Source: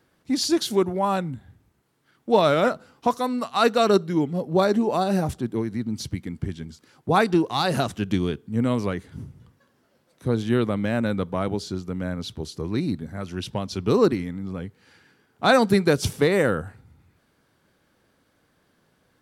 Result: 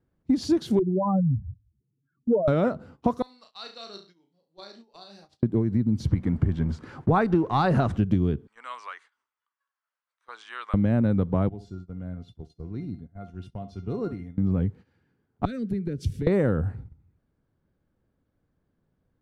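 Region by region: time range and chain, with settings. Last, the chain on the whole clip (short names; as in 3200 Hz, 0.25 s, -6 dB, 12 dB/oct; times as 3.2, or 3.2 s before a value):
0.79–2.48 spectral contrast raised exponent 3.6 + dynamic EQ 820 Hz, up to -6 dB, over -36 dBFS, Q 1.6
3.22–5.43 band-pass 4500 Hz, Q 4.4 + flutter echo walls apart 6 m, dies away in 0.35 s
6.06–7.97 G.711 law mismatch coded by mu + LPF 11000 Hz 24 dB/oct + bell 1300 Hz +8 dB 1.9 oct
8.47–10.74 elliptic band-pass 1100–8700 Hz, stop band 70 dB + bell 3900 Hz -3 dB 0.29 oct
11.49–14.38 resonator 700 Hz, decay 0.21 s, mix 90% + flutter echo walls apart 11.3 m, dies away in 0.29 s
15.45–16.27 Butterworth band-stop 860 Hz, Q 0.64 + compressor, threshold -34 dBFS + three-band expander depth 100%
whole clip: gate -49 dBFS, range -16 dB; tilt -4 dB/oct; compressor 5:1, threshold -19 dBFS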